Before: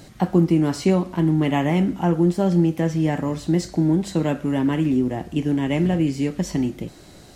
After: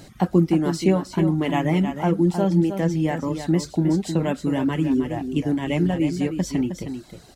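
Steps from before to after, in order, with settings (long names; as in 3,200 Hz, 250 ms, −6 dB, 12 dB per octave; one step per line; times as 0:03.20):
reverb reduction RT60 0.85 s
on a send: single-tap delay 313 ms −8.5 dB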